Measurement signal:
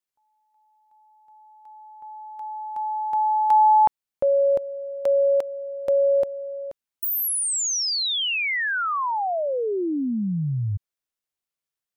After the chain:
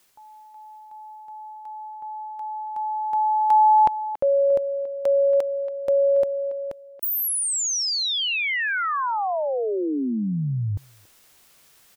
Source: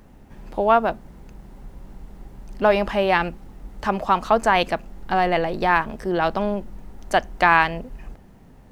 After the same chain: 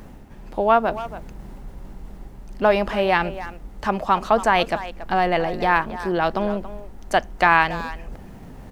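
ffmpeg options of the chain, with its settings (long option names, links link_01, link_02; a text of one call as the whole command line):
ffmpeg -i in.wav -filter_complex "[0:a]areverse,acompressor=mode=upward:threshold=-28dB:ratio=2.5:attack=6.9:release=523:knee=2.83:detection=peak,areverse,asplit=2[link_01][link_02];[link_02]adelay=280,highpass=300,lowpass=3400,asoftclip=type=hard:threshold=-10.5dB,volume=-13dB[link_03];[link_01][link_03]amix=inputs=2:normalize=0" out.wav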